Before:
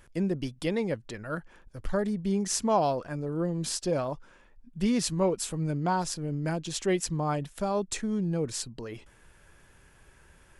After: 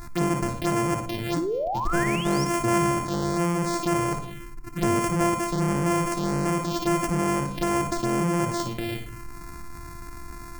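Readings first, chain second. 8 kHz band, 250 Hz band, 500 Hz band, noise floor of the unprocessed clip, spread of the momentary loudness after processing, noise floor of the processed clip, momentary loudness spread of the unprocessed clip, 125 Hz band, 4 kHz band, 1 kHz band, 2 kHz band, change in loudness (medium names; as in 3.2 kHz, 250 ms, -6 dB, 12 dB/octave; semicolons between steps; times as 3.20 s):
+1.5 dB, +5.0 dB, +3.0 dB, -59 dBFS, 18 LU, -39 dBFS, 11 LU, +5.0 dB, +2.5 dB, +7.0 dB, +9.0 dB, +4.5 dB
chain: sorted samples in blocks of 128 samples; painted sound rise, 1.36–2.45 s, 290–5900 Hz -34 dBFS; touch-sensitive phaser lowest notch 490 Hz, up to 3.9 kHz, full sweep at -27 dBFS; flutter echo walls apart 9.8 m, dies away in 0.31 s; simulated room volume 440 m³, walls furnished, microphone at 0.41 m; level flattener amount 50%; trim +2 dB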